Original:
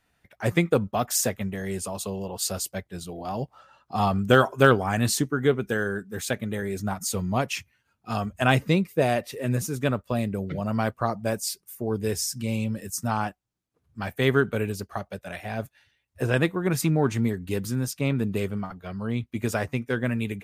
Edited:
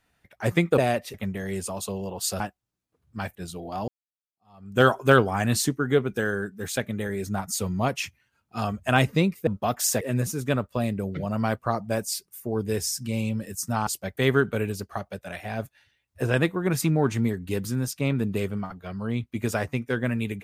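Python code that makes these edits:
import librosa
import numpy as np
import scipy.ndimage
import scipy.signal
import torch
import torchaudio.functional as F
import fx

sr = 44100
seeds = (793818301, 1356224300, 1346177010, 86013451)

y = fx.edit(x, sr, fx.swap(start_s=0.78, length_s=0.54, other_s=9.0, other_length_s=0.36),
    fx.swap(start_s=2.58, length_s=0.3, other_s=13.22, other_length_s=0.95),
    fx.fade_in_span(start_s=3.41, length_s=0.94, curve='exp'), tone=tone)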